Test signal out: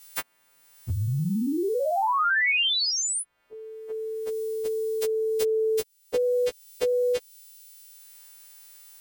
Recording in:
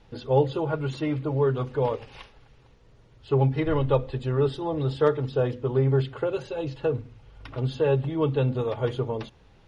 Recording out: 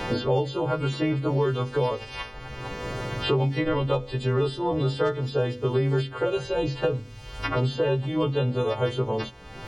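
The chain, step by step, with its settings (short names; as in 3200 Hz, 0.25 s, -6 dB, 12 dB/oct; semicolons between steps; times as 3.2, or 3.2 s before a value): frequency quantiser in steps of 2 st; three-band squash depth 100%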